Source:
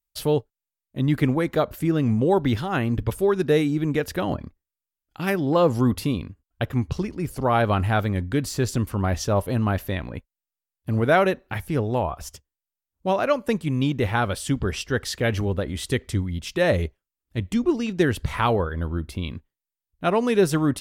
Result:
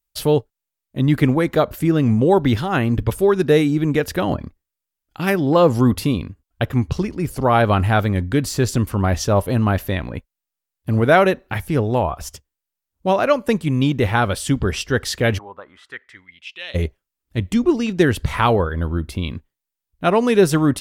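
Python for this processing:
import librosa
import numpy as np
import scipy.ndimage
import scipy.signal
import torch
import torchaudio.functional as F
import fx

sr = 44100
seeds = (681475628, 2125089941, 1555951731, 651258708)

y = fx.bandpass_q(x, sr, hz=fx.line((15.37, 850.0), (16.74, 3400.0)), q=4.3, at=(15.37, 16.74), fade=0.02)
y = y * librosa.db_to_amplitude(5.0)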